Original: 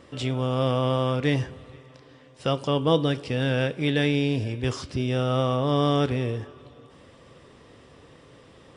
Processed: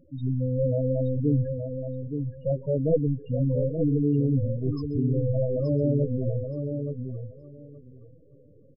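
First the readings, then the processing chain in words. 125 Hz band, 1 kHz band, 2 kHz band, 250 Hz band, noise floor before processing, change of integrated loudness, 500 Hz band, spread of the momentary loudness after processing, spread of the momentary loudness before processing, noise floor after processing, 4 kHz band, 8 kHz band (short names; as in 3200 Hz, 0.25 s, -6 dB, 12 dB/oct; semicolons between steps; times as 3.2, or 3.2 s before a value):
+1.5 dB, under -20 dB, under -35 dB, 0.0 dB, -52 dBFS, -1.5 dB, -1.0 dB, 9 LU, 7 LU, -54 dBFS, under -25 dB, under -30 dB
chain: half-wave gain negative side -7 dB; loudest bins only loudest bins 4; feedback echo 0.873 s, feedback 16%, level -7 dB; gain +4.5 dB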